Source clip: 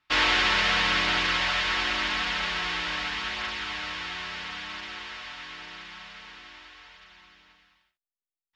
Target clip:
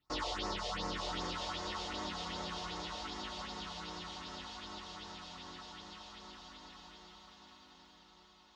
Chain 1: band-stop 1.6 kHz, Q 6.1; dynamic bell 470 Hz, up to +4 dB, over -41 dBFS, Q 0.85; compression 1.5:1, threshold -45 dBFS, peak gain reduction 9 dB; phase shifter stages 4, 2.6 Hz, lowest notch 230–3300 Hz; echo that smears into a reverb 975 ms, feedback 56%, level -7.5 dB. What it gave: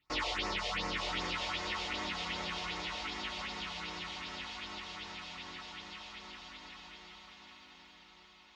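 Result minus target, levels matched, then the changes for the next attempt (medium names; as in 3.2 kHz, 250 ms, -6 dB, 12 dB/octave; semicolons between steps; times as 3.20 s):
2 kHz band +4.5 dB
add after compression: peaking EQ 2.3 kHz -12.5 dB 0.74 oct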